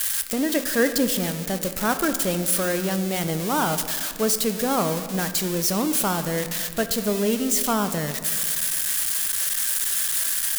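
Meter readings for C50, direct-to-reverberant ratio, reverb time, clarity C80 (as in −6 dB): 10.5 dB, 9.0 dB, 1.8 s, 11.5 dB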